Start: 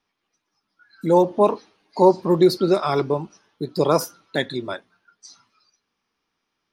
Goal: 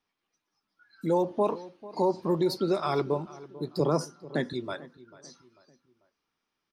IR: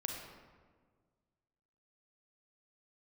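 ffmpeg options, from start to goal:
-filter_complex "[0:a]alimiter=limit=-11dB:level=0:latency=1:release=83,asettb=1/sr,asplit=3[a][b][c];[a]atrim=end=3.804[d];[b]atrim=start=3.8:end=4.53,asetpts=PTS-STARTPTS,afade=t=in:d=0.004:c=qsin,afade=t=out:st=0.726:d=0.004:c=qsin,highpass=120,equalizer=f=150:t=q:w=4:g=10,equalizer=f=240:t=q:w=4:g=8,equalizer=f=360:t=q:w=4:g=5,equalizer=f=2.4k:t=q:w=4:g=-7,equalizer=f=3.6k:t=q:w=4:g=-8,equalizer=f=7.5k:t=q:w=4:g=-5,lowpass=f=9k:w=0.5412,lowpass=f=9k:w=1.3066[e];[c]atrim=start=4.526[f];[d][e]acrossfade=d=0.004:c1=hsin:c2=qsin[g];[g][f]acrossfade=d=0.004:c1=qsin:c2=hsin,asplit=2[h][i];[i]adelay=443,lowpass=f=2.1k:p=1,volume=-18dB,asplit=2[j][k];[k]adelay=443,lowpass=f=2.1k:p=1,volume=0.42,asplit=2[l][m];[m]adelay=443,lowpass=f=2.1k:p=1,volume=0.42[n];[h][j][l][n]amix=inputs=4:normalize=0,volume=-6dB"

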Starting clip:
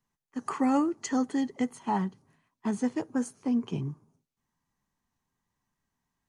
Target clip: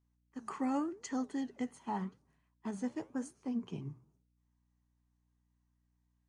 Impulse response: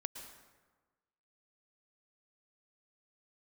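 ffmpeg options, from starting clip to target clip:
-af "aresample=22050,aresample=44100,flanger=delay=3.4:depth=9.7:regen=-85:speed=0.89:shape=triangular,aeval=exprs='val(0)+0.000282*(sin(2*PI*60*n/s)+sin(2*PI*2*60*n/s)/2+sin(2*PI*3*60*n/s)/3+sin(2*PI*4*60*n/s)/4+sin(2*PI*5*60*n/s)/5)':c=same,volume=-4.5dB"

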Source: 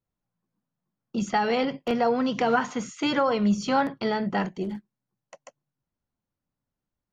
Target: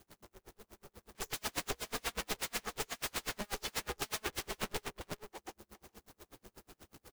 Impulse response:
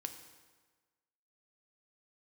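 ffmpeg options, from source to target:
-filter_complex "[0:a]aeval=exprs='val(0)+0.5*0.0376*sgn(val(0))':c=same,asettb=1/sr,asplit=3[a][b][c];[a]atrim=end=2.464[d];[b]atrim=start=2.46:end=4.62,asetpts=PTS-STARTPTS,afade=t=in:d=0.004:c=qsin,afade=t=out:st=2.156:d=0.004:c=qsin,aemphasis=mode=reproduction:type=cd[e];[c]atrim=start=4.616[f];[d][e]acrossfade=d=0.004:c1=hsin:c2=qsin[g];[g][f]acrossfade=d=0.004:c1=qsin:c2=hsin,agate=range=-33dB:threshold=-23dB:ratio=3:detection=peak,lowshelf=f=140:g=-7.5,acompressor=threshold=-33dB:ratio=12,aeval=exprs='(mod(84.1*val(0)+1,2)-1)/84.1':c=same,aeval=exprs='val(0)*sin(2*PI*210*n/s)':c=same,aecho=1:1:419:0.631,aeval=exprs='val(0)*pow(10,-37*(0.5-0.5*cos(2*PI*8.2*n/s))/20)':c=same,volume=11.5dB"

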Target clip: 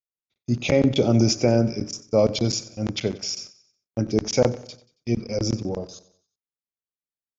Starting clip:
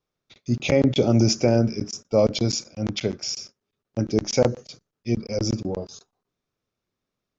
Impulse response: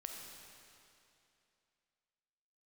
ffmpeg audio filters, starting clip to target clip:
-af "agate=range=-27dB:threshold=-43dB:ratio=16:detection=peak,aecho=1:1:92|184|276|368:0.126|0.0554|0.0244|0.0107"

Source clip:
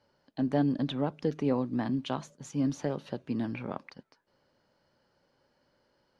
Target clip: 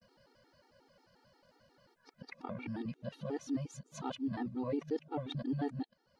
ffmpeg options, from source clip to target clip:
-af "areverse,acompressor=threshold=-59dB:ratio=1.5,afftfilt=real='re*gt(sin(2*PI*5.6*pts/sr)*(1-2*mod(floor(b*sr/1024/240),2)),0)':imag='im*gt(sin(2*PI*5.6*pts/sr)*(1-2*mod(floor(b*sr/1024/240),2)),0)':win_size=1024:overlap=0.75,volume=7.5dB"

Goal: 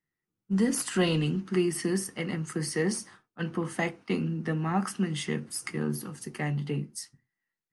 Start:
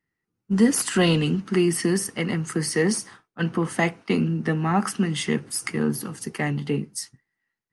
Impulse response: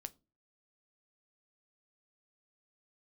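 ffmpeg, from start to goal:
-filter_complex "[1:a]atrim=start_sample=2205,afade=t=out:st=0.2:d=0.01,atrim=end_sample=9261,asetrate=57330,aresample=44100[a];[0:a][a]afir=irnorm=-1:irlink=0"

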